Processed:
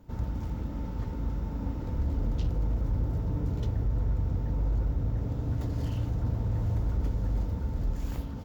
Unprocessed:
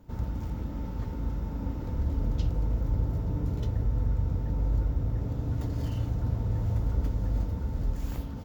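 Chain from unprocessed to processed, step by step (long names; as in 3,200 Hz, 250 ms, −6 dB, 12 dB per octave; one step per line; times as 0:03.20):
hard clipping −22.5 dBFS, distortion −18 dB
highs frequency-modulated by the lows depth 0.14 ms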